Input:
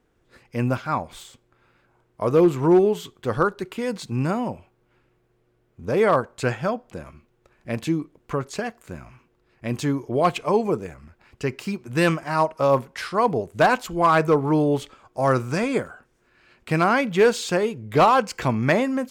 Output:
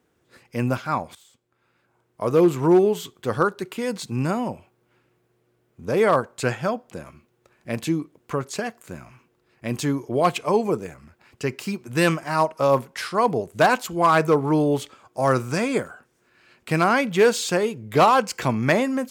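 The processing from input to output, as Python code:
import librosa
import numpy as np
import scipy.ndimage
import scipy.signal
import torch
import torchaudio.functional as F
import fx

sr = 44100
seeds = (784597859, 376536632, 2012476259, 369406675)

y = fx.edit(x, sr, fx.fade_in_from(start_s=1.15, length_s=1.31, floor_db=-17.0), tone=tone)
y = scipy.signal.sosfilt(scipy.signal.butter(2, 91.0, 'highpass', fs=sr, output='sos'), y)
y = fx.high_shelf(y, sr, hz=5600.0, db=6.5)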